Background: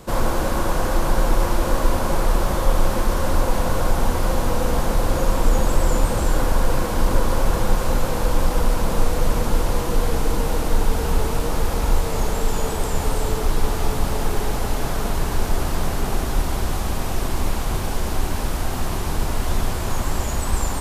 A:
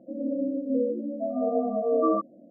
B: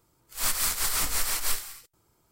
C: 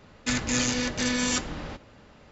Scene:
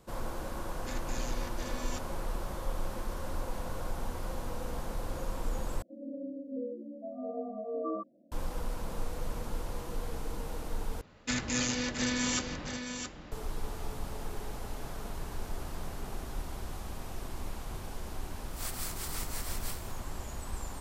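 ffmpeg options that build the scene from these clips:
ffmpeg -i bed.wav -i cue0.wav -i cue1.wav -i cue2.wav -filter_complex "[3:a]asplit=2[link_01][link_02];[0:a]volume=-17dB[link_03];[link_02]aecho=1:1:668:0.422[link_04];[link_03]asplit=3[link_05][link_06][link_07];[link_05]atrim=end=5.824[link_08];[1:a]atrim=end=2.5,asetpts=PTS-STARTPTS,volume=-12dB[link_09];[link_06]atrim=start=8.316:end=11.014[link_10];[link_04]atrim=end=2.31,asetpts=PTS-STARTPTS,volume=-5.5dB[link_11];[link_07]atrim=start=13.316[link_12];[link_01]atrim=end=2.31,asetpts=PTS-STARTPTS,volume=-17.5dB,afade=type=in:duration=0.004:curve=hsin,afade=type=out:start_time=2.306:duration=0.004:curve=hsin,adelay=600[link_13];[2:a]atrim=end=2.31,asetpts=PTS-STARTPTS,volume=-13dB,afade=type=in:duration=0.004:curve=hsin,afade=type=out:start_time=2.306:duration=0.004:curve=hsin,adelay=18190[link_14];[link_08][link_09]acrossfade=duration=0.004:curve1=hsin:curve2=hsin[link_15];[link_15][link_10]acrossfade=duration=0.004:curve1=hsin:curve2=hsin[link_16];[link_16][link_11]acrossfade=duration=0.004:curve1=hsin:curve2=hsin[link_17];[link_17][link_12]acrossfade=duration=0.004:curve1=hsin:curve2=hsin[link_18];[link_18][link_13][link_14]amix=inputs=3:normalize=0" out.wav

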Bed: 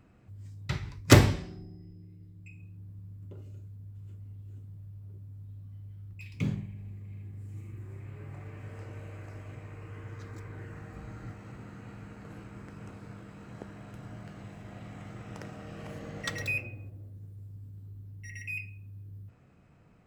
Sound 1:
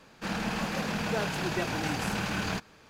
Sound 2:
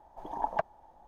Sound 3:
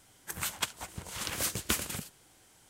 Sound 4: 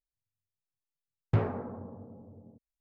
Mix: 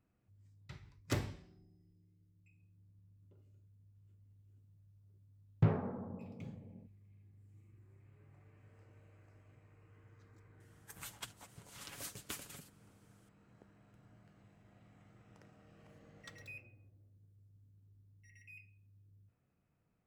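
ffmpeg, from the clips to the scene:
ffmpeg -i bed.wav -i cue0.wav -i cue1.wav -i cue2.wav -i cue3.wav -filter_complex "[0:a]volume=-19dB[link_01];[4:a]equalizer=frequency=170:width=2.9:gain=9.5[link_02];[3:a]aecho=1:1:7.1:0.55[link_03];[link_02]atrim=end=2.8,asetpts=PTS-STARTPTS,volume=-5.5dB,afade=type=in:duration=0.004:curve=hsin,afade=type=out:start_time=2.796:duration=0.004:curve=hsin,adelay=189189S[link_04];[link_03]atrim=end=2.69,asetpts=PTS-STARTPTS,volume=-15.5dB,afade=type=in:duration=0.004:curve=hsin,afade=type=out:start_time=2.686:duration=0.004:curve=hsin,adelay=10600[link_05];[link_01][link_04][link_05]amix=inputs=3:normalize=0" out.wav

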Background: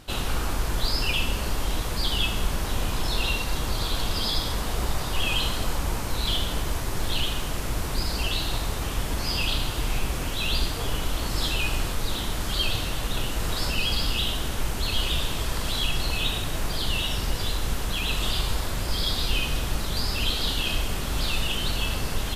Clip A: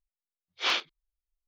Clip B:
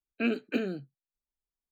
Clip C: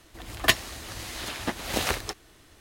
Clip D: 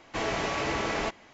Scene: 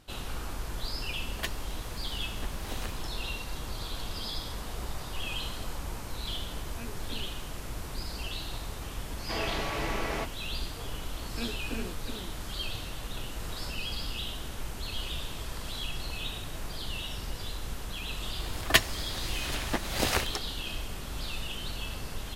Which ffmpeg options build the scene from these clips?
ffmpeg -i bed.wav -i cue0.wav -i cue1.wav -i cue2.wav -i cue3.wav -filter_complex "[3:a]asplit=2[link_01][link_02];[2:a]asplit=2[link_03][link_04];[0:a]volume=-10dB[link_05];[4:a]lowpass=6700[link_06];[link_04]aecho=1:1:368:0.631[link_07];[link_01]atrim=end=2.6,asetpts=PTS-STARTPTS,volume=-15dB,afade=type=in:duration=0.004:curve=hsin,afade=type=out:start_time=2.596:duration=0.004:curve=hsin,adelay=950[link_08];[link_03]atrim=end=1.71,asetpts=PTS-STARTPTS,volume=-16.5dB,afade=type=in:duration=0.004:curve=hsin,afade=type=out:start_time=1.706:duration=0.004:curve=hsin,adelay=6570[link_09];[link_06]atrim=end=1.33,asetpts=PTS-STARTPTS,volume=-4dB,afade=type=in:duration=0.004:curve=hsin,afade=type=out:start_time=1.326:duration=0.004:curve=hsin,adelay=9150[link_10];[link_07]atrim=end=1.71,asetpts=PTS-STARTPTS,volume=-10dB,afade=type=in:duration=0.004:curve=hsin,afade=type=out:start_time=1.706:duration=0.004:curve=hsin,adelay=11170[link_11];[link_02]atrim=end=2.6,asetpts=PTS-STARTPTS,volume=-1dB,afade=type=in:duration=0.004:curve=hsin,afade=type=out:start_time=2.596:duration=0.004:curve=hsin,adelay=18260[link_12];[link_05][link_08][link_09][link_10][link_11][link_12]amix=inputs=6:normalize=0" out.wav

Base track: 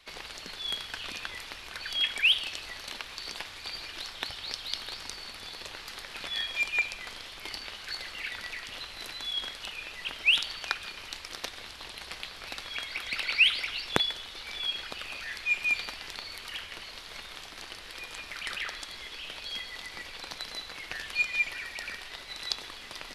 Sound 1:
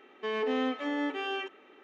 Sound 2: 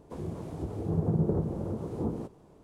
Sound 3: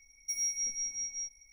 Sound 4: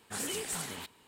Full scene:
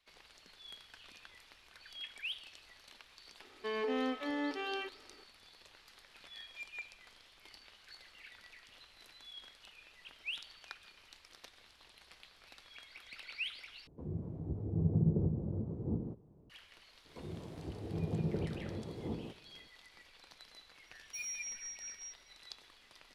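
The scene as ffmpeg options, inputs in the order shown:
ffmpeg -i bed.wav -i cue0.wav -i cue1.wav -i cue2.wav -filter_complex "[2:a]asplit=2[link_01][link_02];[0:a]volume=-18dB[link_03];[link_01]bandpass=frequency=100:width_type=q:width=0.55:csg=0[link_04];[link_03]asplit=2[link_05][link_06];[link_05]atrim=end=13.874[link_07];[link_04]atrim=end=2.63,asetpts=PTS-STARTPTS,volume=-1.5dB[link_08];[link_06]atrim=start=16.496[link_09];[1:a]atrim=end=1.83,asetpts=PTS-STARTPTS,volume=-5dB,afade=type=in:duration=0.004:curve=hsin,afade=type=out:start_time=1.826:duration=0.004:curve=hsin,adelay=150381S[link_10];[link_02]atrim=end=2.63,asetpts=PTS-STARTPTS,volume=-8.5dB,afade=type=in:duration=0.004:curve=hsin,afade=type=out:start_time=2.626:duration=0.004:curve=hsin,adelay=17050[link_11];[3:a]atrim=end=1.52,asetpts=PTS-STARTPTS,volume=-10dB,afade=type=in:duration=0.004:curve=hsin,afade=type=out:start_time=1.516:duration=0.004:curve=hsin,adelay=20850[link_12];[link_07][link_08]acrossfade=duration=0.004:curve1=hsin:curve2=hsin[link_13];[link_13][link_09]acrossfade=duration=0.004:curve1=hsin:curve2=hsin[link_14];[link_14][link_10][link_11][link_12]amix=inputs=4:normalize=0" out.wav

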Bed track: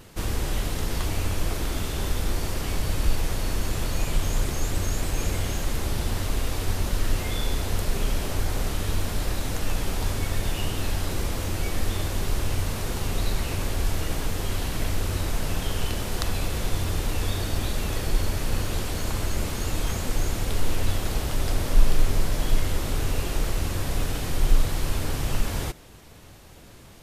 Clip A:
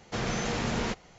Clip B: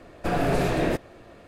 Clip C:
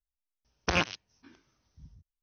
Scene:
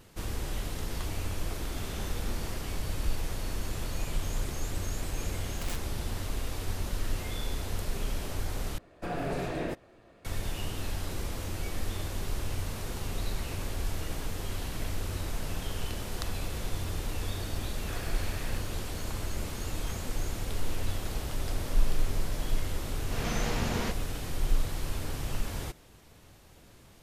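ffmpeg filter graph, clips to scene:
ffmpeg -i bed.wav -i cue0.wav -i cue1.wav -i cue2.wav -filter_complex "[1:a]asplit=2[link_01][link_02];[2:a]asplit=2[link_03][link_04];[0:a]volume=-7.5dB[link_05];[3:a]aeval=exprs='(mod(10*val(0)+1,2)-1)/10':channel_layout=same[link_06];[link_04]highpass=1400[link_07];[link_02]dynaudnorm=framelen=140:gausssize=3:maxgain=8dB[link_08];[link_05]asplit=2[link_09][link_10];[link_09]atrim=end=8.784[link_11];[link_03]atrim=end=1.47,asetpts=PTS-STARTPTS,volume=-9.5dB[link_12];[link_10]atrim=start=10.246[link_13];[link_01]atrim=end=1.18,asetpts=PTS-STARTPTS,volume=-15.5dB,afade=type=in:duration=0.004:curve=hsin,afade=type=out:start_time=1.176:duration=0.004:curve=hsin,adelay=1640[link_14];[link_06]atrim=end=2.22,asetpts=PTS-STARTPTS,volume=-14dB,afade=type=in:duration=0.004:curve=hsin,afade=type=out:start_time=2.216:duration=0.004:curve=hsin,adelay=217413S[link_15];[link_07]atrim=end=1.47,asetpts=PTS-STARTPTS,volume=-10.5dB,afade=type=in:duration=0.004:curve=hsin,afade=type=out:start_time=1.466:duration=0.004:curve=hsin,adelay=17620[link_16];[link_08]atrim=end=1.18,asetpts=PTS-STARTPTS,volume=-10.5dB,afade=type=in:duration=0.004:curve=hsin,afade=type=out:start_time=1.176:duration=0.004:curve=hsin,adelay=22980[link_17];[link_11][link_12]acrossfade=duration=0.004:curve1=hsin:curve2=hsin[link_18];[link_18][link_13]acrossfade=duration=0.004:curve1=hsin:curve2=hsin[link_19];[link_19][link_14][link_15][link_16][link_17]amix=inputs=5:normalize=0" out.wav

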